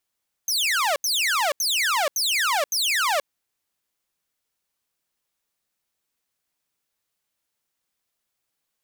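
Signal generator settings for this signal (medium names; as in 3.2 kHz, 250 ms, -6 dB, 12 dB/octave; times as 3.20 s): burst of laser zaps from 6.5 kHz, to 540 Hz, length 0.48 s saw, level -17 dB, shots 5, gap 0.08 s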